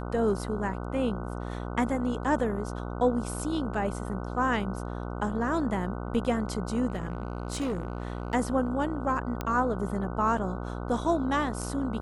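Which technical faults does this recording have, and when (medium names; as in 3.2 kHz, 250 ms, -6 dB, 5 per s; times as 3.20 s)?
buzz 60 Hz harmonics 25 -35 dBFS
6.88–8.35 s: clipped -26 dBFS
9.41 s: pop -17 dBFS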